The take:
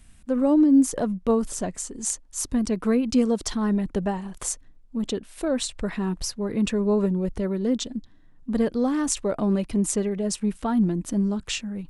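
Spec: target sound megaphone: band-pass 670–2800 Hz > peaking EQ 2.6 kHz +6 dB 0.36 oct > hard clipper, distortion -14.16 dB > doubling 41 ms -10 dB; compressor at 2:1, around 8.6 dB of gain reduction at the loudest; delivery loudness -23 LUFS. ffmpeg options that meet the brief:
-filter_complex "[0:a]acompressor=threshold=0.0316:ratio=2,highpass=670,lowpass=2800,equalizer=f=2600:t=o:w=0.36:g=6,asoftclip=type=hard:threshold=0.0224,asplit=2[s0][s1];[s1]adelay=41,volume=0.316[s2];[s0][s2]amix=inputs=2:normalize=0,volume=8.41"

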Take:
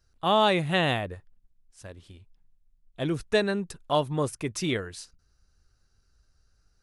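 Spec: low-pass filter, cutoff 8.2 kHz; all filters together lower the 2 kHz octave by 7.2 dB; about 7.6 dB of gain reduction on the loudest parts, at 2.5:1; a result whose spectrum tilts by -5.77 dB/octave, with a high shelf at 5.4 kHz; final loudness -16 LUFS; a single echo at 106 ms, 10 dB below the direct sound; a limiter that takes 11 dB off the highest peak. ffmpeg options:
-af "lowpass=8200,equalizer=f=2000:t=o:g=-8,highshelf=f=5400:g=-8,acompressor=threshold=0.0316:ratio=2.5,alimiter=level_in=2:limit=0.0631:level=0:latency=1,volume=0.501,aecho=1:1:106:0.316,volume=15.8"

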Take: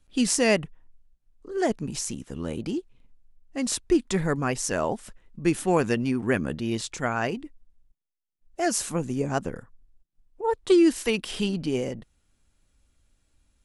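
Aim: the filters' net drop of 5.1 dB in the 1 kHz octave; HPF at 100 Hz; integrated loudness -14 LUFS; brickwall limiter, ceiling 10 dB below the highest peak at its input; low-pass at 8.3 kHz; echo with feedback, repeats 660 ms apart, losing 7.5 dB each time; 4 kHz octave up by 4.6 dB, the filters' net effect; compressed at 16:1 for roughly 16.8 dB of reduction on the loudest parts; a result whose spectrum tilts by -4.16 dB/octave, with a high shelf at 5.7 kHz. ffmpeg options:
-af "highpass=100,lowpass=8300,equalizer=f=1000:t=o:g=-8,equalizer=f=4000:t=o:g=5.5,highshelf=f=5700:g=4,acompressor=threshold=0.0251:ratio=16,alimiter=level_in=1.78:limit=0.0631:level=0:latency=1,volume=0.562,aecho=1:1:660|1320|1980|2640|3300:0.422|0.177|0.0744|0.0312|0.0131,volume=18.8"

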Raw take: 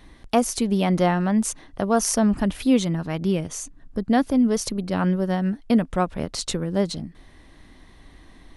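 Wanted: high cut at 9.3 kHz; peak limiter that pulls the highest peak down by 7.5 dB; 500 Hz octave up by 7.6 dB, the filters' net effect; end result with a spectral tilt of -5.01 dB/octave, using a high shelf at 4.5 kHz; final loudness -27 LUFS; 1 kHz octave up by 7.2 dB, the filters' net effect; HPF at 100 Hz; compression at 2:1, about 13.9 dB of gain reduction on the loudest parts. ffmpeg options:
-af "highpass=100,lowpass=9300,equalizer=f=500:t=o:g=7.5,equalizer=f=1000:t=o:g=6.5,highshelf=f=4500:g=3.5,acompressor=threshold=0.0178:ratio=2,volume=1.78,alimiter=limit=0.158:level=0:latency=1"

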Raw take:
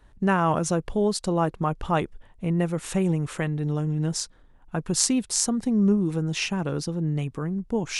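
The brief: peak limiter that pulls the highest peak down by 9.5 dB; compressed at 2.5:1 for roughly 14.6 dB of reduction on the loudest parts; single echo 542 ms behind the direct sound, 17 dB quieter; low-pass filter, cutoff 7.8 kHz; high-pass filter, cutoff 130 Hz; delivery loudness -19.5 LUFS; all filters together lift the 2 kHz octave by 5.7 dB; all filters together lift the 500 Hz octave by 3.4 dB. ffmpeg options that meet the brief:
-af "highpass=130,lowpass=7800,equalizer=f=500:t=o:g=4,equalizer=f=2000:t=o:g=7.5,acompressor=threshold=0.0112:ratio=2.5,alimiter=level_in=1.41:limit=0.0631:level=0:latency=1,volume=0.708,aecho=1:1:542:0.141,volume=8.41"

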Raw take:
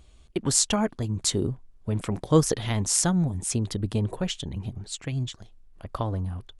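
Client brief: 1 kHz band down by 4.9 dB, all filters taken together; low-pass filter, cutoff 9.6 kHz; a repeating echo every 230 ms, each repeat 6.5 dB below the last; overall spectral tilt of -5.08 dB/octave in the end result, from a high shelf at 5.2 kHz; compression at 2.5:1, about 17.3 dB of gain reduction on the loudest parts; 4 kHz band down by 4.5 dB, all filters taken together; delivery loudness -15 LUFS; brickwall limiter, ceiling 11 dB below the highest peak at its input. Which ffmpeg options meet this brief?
-af "lowpass=9600,equalizer=f=1000:t=o:g=-6,equalizer=f=4000:t=o:g=-8.5,highshelf=f=5200:g=5,acompressor=threshold=0.00891:ratio=2.5,alimiter=level_in=2:limit=0.0631:level=0:latency=1,volume=0.501,aecho=1:1:230|460|690|920|1150|1380:0.473|0.222|0.105|0.0491|0.0231|0.0109,volume=17.8"

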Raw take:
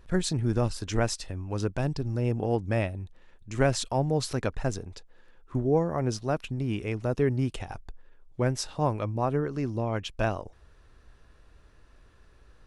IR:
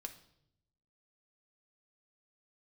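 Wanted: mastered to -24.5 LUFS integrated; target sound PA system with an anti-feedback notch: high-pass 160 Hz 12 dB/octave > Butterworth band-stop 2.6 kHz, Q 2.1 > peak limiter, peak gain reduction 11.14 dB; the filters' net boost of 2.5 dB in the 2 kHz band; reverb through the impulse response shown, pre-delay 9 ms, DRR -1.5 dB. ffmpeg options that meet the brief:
-filter_complex "[0:a]equalizer=f=2000:t=o:g=5,asplit=2[s0][s1];[1:a]atrim=start_sample=2205,adelay=9[s2];[s1][s2]afir=irnorm=-1:irlink=0,volume=1.88[s3];[s0][s3]amix=inputs=2:normalize=0,highpass=160,asuperstop=centerf=2600:order=8:qfactor=2.1,volume=1.78,alimiter=limit=0.224:level=0:latency=1"

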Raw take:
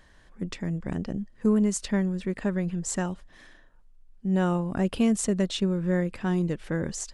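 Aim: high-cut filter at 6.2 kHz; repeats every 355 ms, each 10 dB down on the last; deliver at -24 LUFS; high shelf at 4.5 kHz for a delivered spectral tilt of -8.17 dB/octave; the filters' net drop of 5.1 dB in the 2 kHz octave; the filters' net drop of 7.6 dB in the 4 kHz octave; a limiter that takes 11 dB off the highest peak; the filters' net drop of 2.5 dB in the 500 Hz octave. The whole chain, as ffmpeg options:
-af "lowpass=6200,equalizer=f=500:t=o:g=-3,equalizer=f=2000:t=o:g=-4.5,equalizer=f=4000:t=o:g=-5.5,highshelf=f=4500:g=-4,alimiter=level_in=1.12:limit=0.0631:level=0:latency=1,volume=0.891,aecho=1:1:355|710|1065|1420:0.316|0.101|0.0324|0.0104,volume=3.35"

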